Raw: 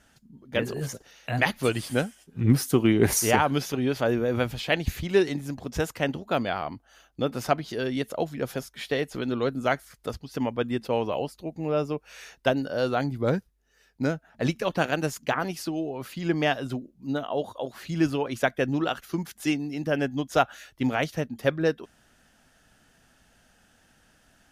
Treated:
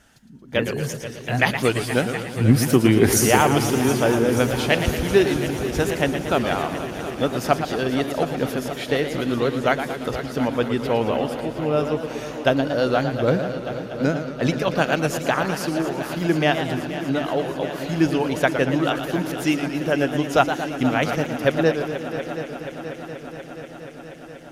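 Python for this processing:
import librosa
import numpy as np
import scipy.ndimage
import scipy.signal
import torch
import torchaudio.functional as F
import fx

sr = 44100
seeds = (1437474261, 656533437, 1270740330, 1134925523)

y = fx.echo_heads(x, sr, ms=240, heads='second and third', feedback_pct=71, wet_db=-13.0)
y = fx.echo_warbled(y, sr, ms=115, feedback_pct=57, rate_hz=2.8, cents=138, wet_db=-9)
y = y * librosa.db_to_amplitude(4.5)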